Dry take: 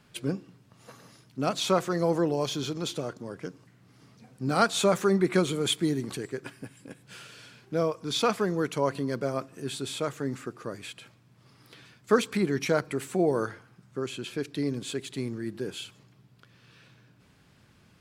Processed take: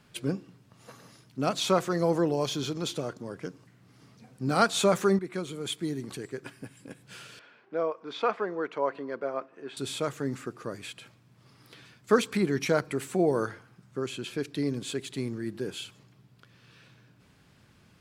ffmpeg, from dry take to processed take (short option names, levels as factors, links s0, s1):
-filter_complex "[0:a]asettb=1/sr,asplit=3[s0][s1][s2];[s0]atrim=end=7.394[s3];[s1]atrim=start=7.39:end=9.77,asetpts=PTS-STARTPTS,afade=t=in:d=0.004:c=qsin,afade=t=out:st=2.376:d=0.004:c=qsin,highpass=420,lowpass=2000[s4];[s2]atrim=start=9.766[s5];[s3][s4]acrossfade=d=0.004:c1=hsin:c2=qsin[s6];[s6][s5]acrossfade=d=0.004:c1=qsin:c2=hsin,asplit=2[s7][s8];[s7]atrim=end=5.19,asetpts=PTS-STARTPTS,afade=t=out:st=5.186:d=0.004:c=hsin:silence=0.223872[s9];[s8]atrim=start=5.19,asetpts=PTS-STARTPTS,afade=t=in:d=1.7:silence=0.223872[s10];[s9][s10]concat=n=2:v=0:a=1"